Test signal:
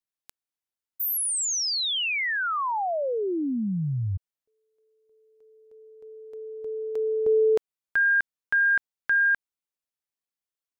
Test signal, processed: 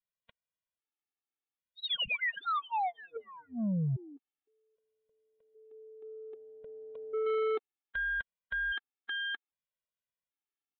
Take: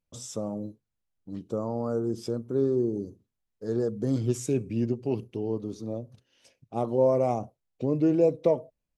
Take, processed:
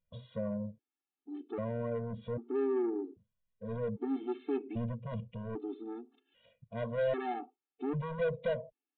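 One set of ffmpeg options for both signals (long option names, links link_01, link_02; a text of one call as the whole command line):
ffmpeg -i in.wav -af "aresample=8000,asoftclip=type=tanh:threshold=-27dB,aresample=44100,afftfilt=real='re*gt(sin(2*PI*0.63*pts/sr)*(1-2*mod(floor(b*sr/1024/230),2)),0)':imag='im*gt(sin(2*PI*0.63*pts/sr)*(1-2*mod(floor(b*sr/1024/230),2)),0)':win_size=1024:overlap=0.75" out.wav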